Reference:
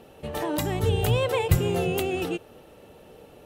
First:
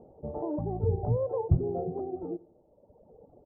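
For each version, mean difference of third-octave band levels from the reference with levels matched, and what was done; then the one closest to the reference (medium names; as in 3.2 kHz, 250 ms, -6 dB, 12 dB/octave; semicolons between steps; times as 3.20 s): 13.0 dB: reverb removal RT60 1.7 s; steep low-pass 840 Hz 36 dB/octave; on a send: feedback delay 87 ms, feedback 40%, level -22 dB; on the sum: trim -2.5 dB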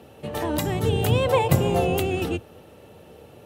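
2.0 dB: octave divider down 2 oct, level +4 dB; high-pass 90 Hz 24 dB/octave; time-frequency box 1.27–1.97 s, 490–1200 Hz +6 dB; trim +1.5 dB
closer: second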